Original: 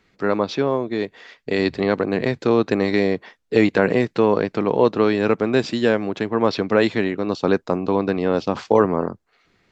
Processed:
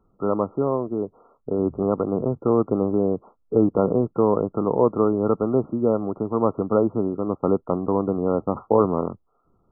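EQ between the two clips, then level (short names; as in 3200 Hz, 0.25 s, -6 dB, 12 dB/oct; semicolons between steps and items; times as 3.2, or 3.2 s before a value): brick-wall FIR low-pass 1400 Hz; low shelf 65 Hz +10.5 dB; -2.5 dB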